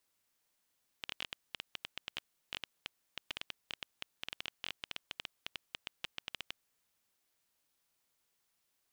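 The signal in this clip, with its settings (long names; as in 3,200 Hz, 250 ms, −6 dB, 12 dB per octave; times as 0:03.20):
Geiger counter clicks 9.9 per second −21 dBFS 5.88 s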